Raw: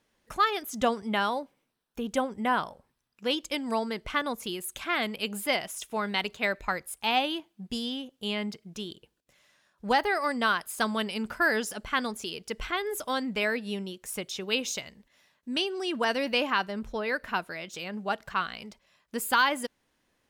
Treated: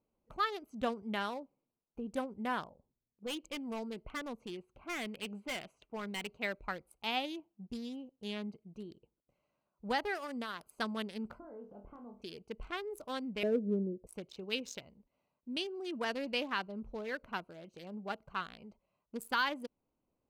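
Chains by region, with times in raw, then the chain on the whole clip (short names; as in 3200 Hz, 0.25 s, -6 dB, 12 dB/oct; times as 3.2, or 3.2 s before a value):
2.69–6.28 low-pass opened by the level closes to 570 Hz, open at -27.5 dBFS + dynamic EQ 2500 Hz, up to +7 dB, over -44 dBFS, Q 2.3 + overloaded stage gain 25.5 dB
10.15–10.67 high shelf 6800 Hz +7 dB + compressor 10:1, threshold -26 dBFS
11.39–12.22 LPF 1100 Hz + compressor 4:1, threshold -41 dBFS + flutter echo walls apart 4.3 m, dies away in 0.3 s
13.43–14.07 synth low-pass 520 Hz, resonance Q 2.3 + low shelf 380 Hz +9.5 dB
whole clip: Wiener smoothing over 25 samples; dynamic EQ 800 Hz, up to -3 dB, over -41 dBFS, Q 1.2; gain -7 dB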